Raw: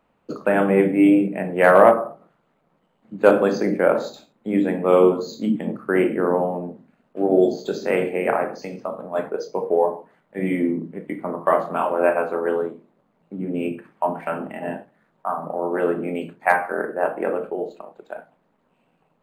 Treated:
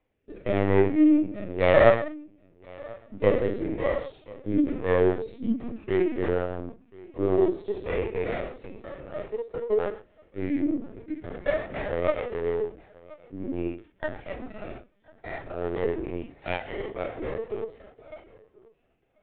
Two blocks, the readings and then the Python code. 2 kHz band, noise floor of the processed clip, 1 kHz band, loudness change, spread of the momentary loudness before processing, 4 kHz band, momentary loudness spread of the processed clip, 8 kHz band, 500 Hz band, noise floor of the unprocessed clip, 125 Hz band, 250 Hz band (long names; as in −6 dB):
−7.5 dB, −67 dBFS, −11.5 dB, −6.0 dB, 16 LU, −2.5 dB, 20 LU, can't be measured, −6.0 dB, −67 dBFS, −1.5 dB, −5.0 dB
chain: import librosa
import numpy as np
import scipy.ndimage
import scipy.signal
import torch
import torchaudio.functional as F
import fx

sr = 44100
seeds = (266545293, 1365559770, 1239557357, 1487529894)

y = fx.lower_of_two(x, sr, delay_ms=0.37)
y = y + 10.0 ** (-22.5 / 20.0) * np.pad(y, (int(1035 * sr / 1000.0), 0))[:len(y)]
y = fx.rotary_switch(y, sr, hz=0.9, then_hz=6.7, switch_at_s=4.53)
y = fx.dynamic_eq(y, sr, hz=1900.0, q=7.6, threshold_db=-45.0, ratio=4.0, max_db=4)
y = scipy.signal.sosfilt(scipy.signal.butter(2, 160.0, 'highpass', fs=sr, output='sos'), y)
y = fx.lpc_vocoder(y, sr, seeds[0], excitation='pitch_kept', order=16)
y = fx.hpss(y, sr, part='percussive', gain_db=-10)
y = y * 10.0 ** (-1.0 / 20.0)